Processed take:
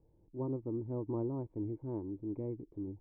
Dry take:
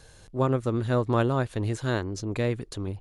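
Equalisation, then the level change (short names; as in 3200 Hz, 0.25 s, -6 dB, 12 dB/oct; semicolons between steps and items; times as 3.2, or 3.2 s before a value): thirty-one-band EQ 250 Hz -7 dB, 800 Hz -8 dB, 1600 Hz -6 dB; dynamic EQ 1000 Hz, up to +5 dB, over -44 dBFS, Q 2.8; vocal tract filter u; 0.0 dB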